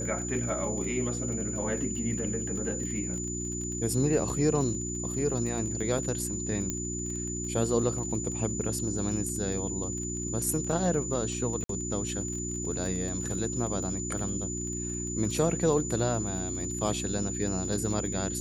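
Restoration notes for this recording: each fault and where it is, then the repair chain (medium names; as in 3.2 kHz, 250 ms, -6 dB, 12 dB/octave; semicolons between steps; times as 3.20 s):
crackle 26 per s -36 dBFS
hum 60 Hz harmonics 6 -36 dBFS
whine 7 kHz -35 dBFS
6.70 s: pop -16 dBFS
11.64–11.69 s: dropout 53 ms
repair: de-click; de-hum 60 Hz, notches 6; band-stop 7 kHz, Q 30; interpolate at 11.64 s, 53 ms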